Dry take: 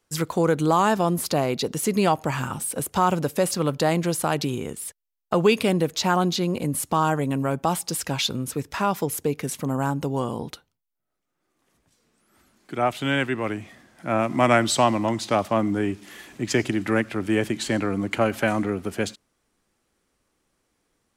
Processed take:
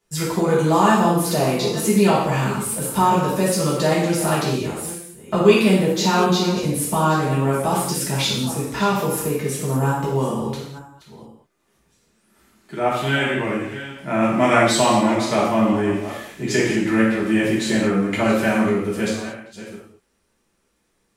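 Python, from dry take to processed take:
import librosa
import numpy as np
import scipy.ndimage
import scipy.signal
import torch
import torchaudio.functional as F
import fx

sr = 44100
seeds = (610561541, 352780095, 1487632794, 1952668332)

y = fx.reverse_delay(x, sr, ms=449, wet_db=-13.0)
y = fx.rev_gated(y, sr, seeds[0], gate_ms=260, shape='falling', drr_db=-8.0)
y = F.gain(torch.from_numpy(y), -4.5).numpy()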